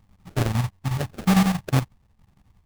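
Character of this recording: chopped level 11 Hz, depth 60%, duty 70%; phasing stages 4, 1.8 Hz, lowest notch 330–1100 Hz; aliases and images of a low sample rate 1 kHz, jitter 20%

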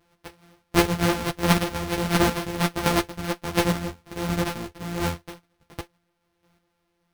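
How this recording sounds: a buzz of ramps at a fixed pitch in blocks of 256 samples; chopped level 1.4 Hz, depth 60%, duty 20%; aliases and images of a low sample rate 7.2 kHz, jitter 0%; a shimmering, thickened sound

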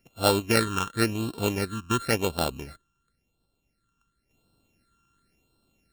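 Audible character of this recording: a buzz of ramps at a fixed pitch in blocks of 32 samples; phasing stages 8, 0.94 Hz, lowest notch 610–2000 Hz

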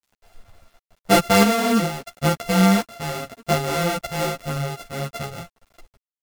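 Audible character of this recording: a buzz of ramps at a fixed pitch in blocks of 64 samples; random-step tremolo; a quantiser's noise floor 10-bit, dither none; a shimmering, thickened sound

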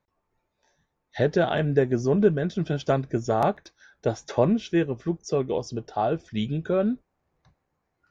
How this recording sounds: noise floor -78 dBFS; spectral tilt -5.5 dB/octave

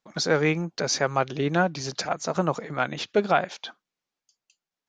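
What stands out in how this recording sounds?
noise floor -90 dBFS; spectral tilt -4.0 dB/octave

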